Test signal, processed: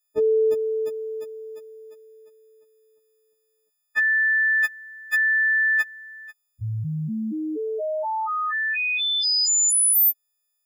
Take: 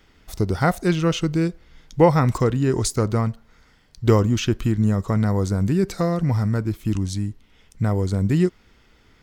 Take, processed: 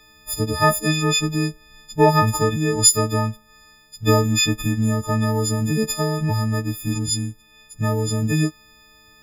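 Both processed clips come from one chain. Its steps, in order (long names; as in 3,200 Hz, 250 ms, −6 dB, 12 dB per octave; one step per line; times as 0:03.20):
every partial snapped to a pitch grid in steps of 6 semitones
level −1 dB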